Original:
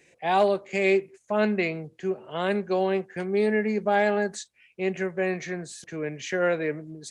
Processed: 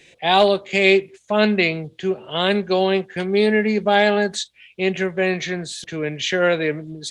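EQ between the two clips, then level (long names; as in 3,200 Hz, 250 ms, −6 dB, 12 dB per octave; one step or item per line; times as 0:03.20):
low-shelf EQ 86 Hz +8.5 dB
parametric band 3,500 Hz +13.5 dB 0.74 octaves
+5.5 dB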